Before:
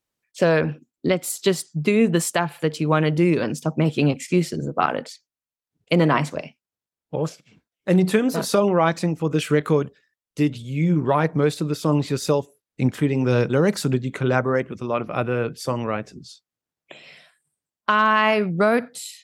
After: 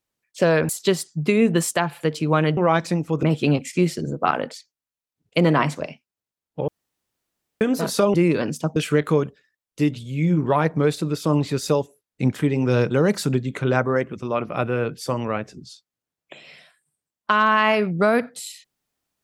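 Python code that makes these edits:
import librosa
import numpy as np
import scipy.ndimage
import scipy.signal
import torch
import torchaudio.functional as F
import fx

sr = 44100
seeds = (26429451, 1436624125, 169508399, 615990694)

y = fx.edit(x, sr, fx.cut(start_s=0.69, length_s=0.59),
    fx.swap(start_s=3.16, length_s=0.62, other_s=8.69, other_length_s=0.66),
    fx.room_tone_fill(start_s=7.23, length_s=0.93), tone=tone)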